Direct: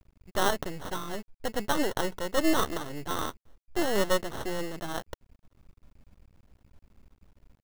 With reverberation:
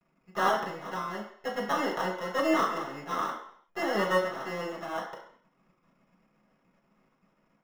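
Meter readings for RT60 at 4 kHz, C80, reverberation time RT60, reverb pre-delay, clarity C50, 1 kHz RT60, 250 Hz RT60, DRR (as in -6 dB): 0.60 s, 9.0 dB, 0.60 s, 3 ms, 6.0 dB, 0.60 s, 0.50 s, -5.5 dB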